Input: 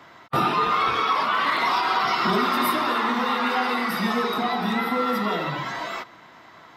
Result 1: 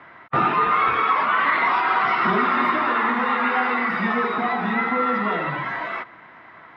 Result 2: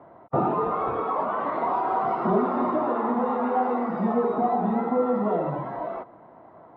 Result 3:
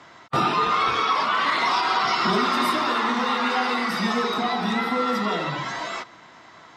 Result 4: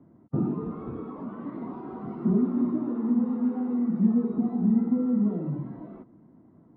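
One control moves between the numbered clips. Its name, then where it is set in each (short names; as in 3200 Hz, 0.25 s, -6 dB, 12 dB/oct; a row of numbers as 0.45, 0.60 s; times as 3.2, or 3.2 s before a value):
synth low-pass, frequency: 2000, 670, 7100, 250 Hz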